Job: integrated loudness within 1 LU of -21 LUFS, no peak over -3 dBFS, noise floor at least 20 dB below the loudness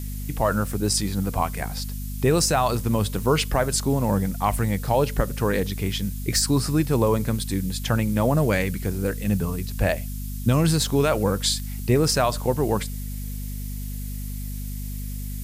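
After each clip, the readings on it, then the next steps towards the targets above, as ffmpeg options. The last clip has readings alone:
hum 50 Hz; highest harmonic 250 Hz; hum level -28 dBFS; noise floor -31 dBFS; noise floor target -44 dBFS; loudness -24.0 LUFS; peak level -8.5 dBFS; loudness target -21.0 LUFS
-> -af "bandreject=f=50:t=h:w=6,bandreject=f=100:t=h:w=6,bandreject=f=150:t=h:w=6,bandreject=f=200:t=h:w=6,bandreject=f=250:t=h:w=6"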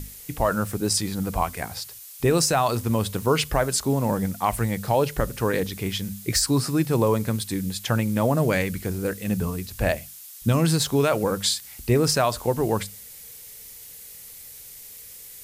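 hum not found; noise floor -43 dBFS; noise floor target -44 dBFS
-> -af "afftdn=nr=6:nf=-43"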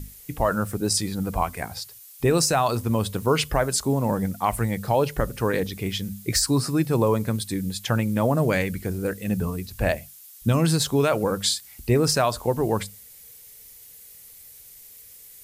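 noise floor -47 dBFS; loudness -24.0 LUFS; peak level -9.0 dBFS; loudness target -21.0 LUFS
-> -af "volume=1.41"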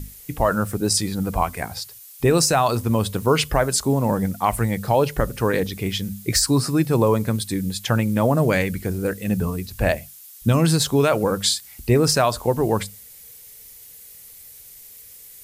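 loudness -21.0 LUFS; peak level -6.0 dBFS; noise floor -44 dBFS

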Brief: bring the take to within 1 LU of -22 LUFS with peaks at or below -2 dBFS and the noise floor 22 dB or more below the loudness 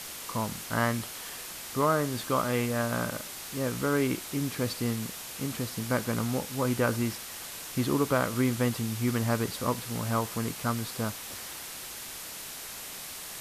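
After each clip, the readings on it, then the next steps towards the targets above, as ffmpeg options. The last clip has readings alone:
noise floor -41 dBFS; noise floor target -53 dBFS; loudness -31.0 LUFS; peak level -13.0 dBFS; loudness target -22.0 LUFS
-> -af "afftdn=nr=12:nf=-41"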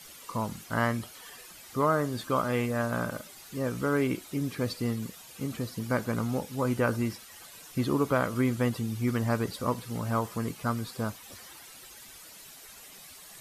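noise floor -49 dBFS; noise floor target -53 dBFS
-> -af "afftdn=nr=6:nf=-49"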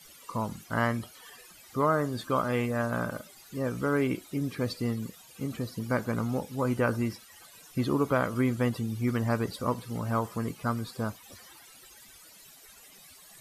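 noise floor -53 dBFS; loudness -30.5 LUFS; peak level -13.5 dBFS; loudness target -22.0 LUFS
-> -af "volume=2.66"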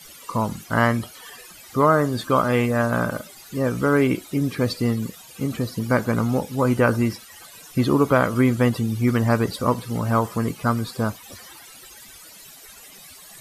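loudness -22.0 LUFS; peak level -5.0 dBFS; noise floor -45 dBFS

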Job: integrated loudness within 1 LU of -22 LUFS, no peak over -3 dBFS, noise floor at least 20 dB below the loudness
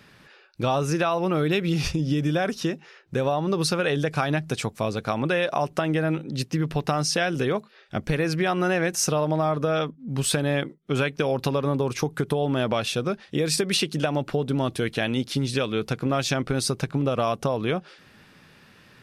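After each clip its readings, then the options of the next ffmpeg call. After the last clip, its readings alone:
loudness -25.5 LUFS; peak level -9.0 dBFS; loudness target -22.0 LUFS
-> -af "volume=1.5"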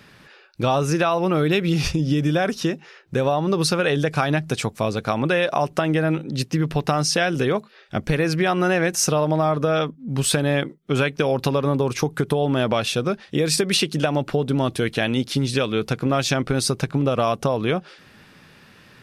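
loudness -22.0 LUFS; peak level -5.5 dBFS; noise floor -51 dBFS

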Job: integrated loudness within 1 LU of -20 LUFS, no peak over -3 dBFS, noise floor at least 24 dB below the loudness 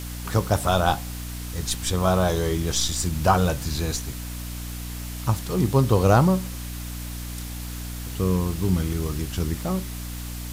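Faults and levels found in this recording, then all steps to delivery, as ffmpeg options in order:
hum 60 Hz; highest harmonic 300 Hz; hum level -31 dBFS; noise floor -33 dBFS; noise floor target -49 dBFS; loudness -25.0 LUFS; peak level -4.5 dBFS; loudness target -20.0 LUFS
-> -af "bandreject=f=60:t=h:w=4,bandreject=f=120:t=h:w=4,bandreject=f=180:t=h:w=4,bandreject=f=240:t=h:w=4,bandreject=f=300:t=h:w=4"
-af "afftdn=nr=16:nf=-33"
-af "volume=1.78,alimiter=limit=0.708:level=0:latency=1"

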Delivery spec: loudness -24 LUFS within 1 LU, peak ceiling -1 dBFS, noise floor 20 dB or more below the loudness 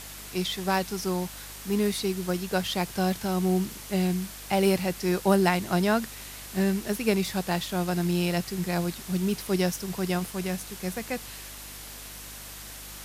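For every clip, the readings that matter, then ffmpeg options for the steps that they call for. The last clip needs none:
hum 50 Hz; highest harmonic 300 Hz; hum level -47 dBFS; noise floor -42 dBFS; noise floor target -48 dBFS; loudness -27.5 LUFS; peak level -7.5 dBFS; loudness target -24.0 LUFS
-> -af "bandreject=f=50:t=h:w=4,bandreject=f=100:t=h:w=4,bandreject=f=150:t=h:w=4,bandreject=f=200:t=h:w=4,bandreject=f=250:t=h:w=4,bandreject=f=300:t=h:w=4"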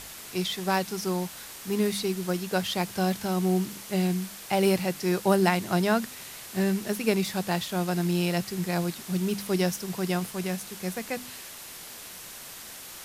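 hum not found; noise floor -43 dBFS; noise floor target -48 dBFS
-> -af "afftdn=nr=6:nf=-43"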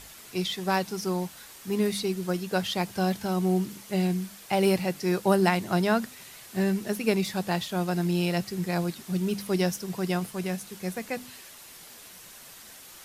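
noise floor -48 dBFS; loudness -28.0 LUFS; peak level -7.0 dBFS; loudness target -24.0 LUFS
-> -af "volume=1.58"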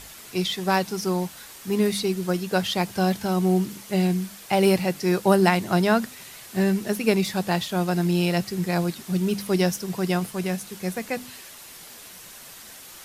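loudness -24.0 LUFS; peak level -3.0 dBFS; noise floor -44 dBFS

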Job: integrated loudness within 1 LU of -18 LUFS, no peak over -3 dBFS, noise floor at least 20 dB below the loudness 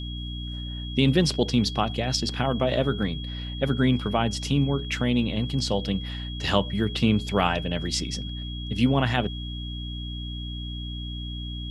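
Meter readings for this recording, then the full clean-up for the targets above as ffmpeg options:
hum 60 Hz; highest harmonic 300 Hz; hum level -32 dBFS; steady tone 3.3 kHz; tone level -38 dBFS; loudness -26.5 LUFS; peak level -6.5 dBFS; loudness target -18.0 LUFS
-> -af "bandreject=f=60:t=h:w=6,bandreject=f=120:t=h:w=6,bandreject=f=180:t=h:w=6,bandreject=f=240:t=h:w=6,bandreject=f=300:t=h:w=6"
-af "bandreject=f=3300:w=30"
-af "volume=2.66,alimiter=limit=0.708:level=0:latency=1"

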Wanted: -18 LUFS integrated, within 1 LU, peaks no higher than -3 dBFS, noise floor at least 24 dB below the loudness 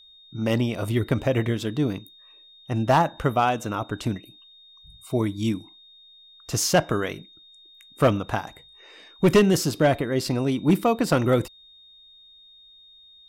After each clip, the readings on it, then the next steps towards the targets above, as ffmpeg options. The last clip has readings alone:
steady tone 3.7 kHz; tone level -49 dBFS; loudness -23.5 LUFS; peak level -10.5 dBFS; loudness target -18.0 LUFS
-> -af "bandreject=f=3700:w=30"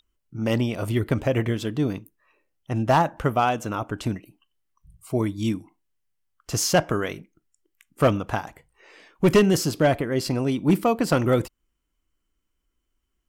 steady tone not found; loudness -24.0 LUFS; peak level -10.5 dBFS; loudness target -18.0 LUFS
-> -af "volume=2"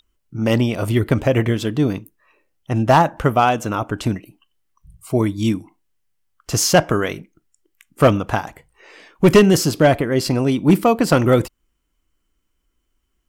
loudness -17.5 LUFS; peak level -4.5 dBFS; noise floor -71 dBFS

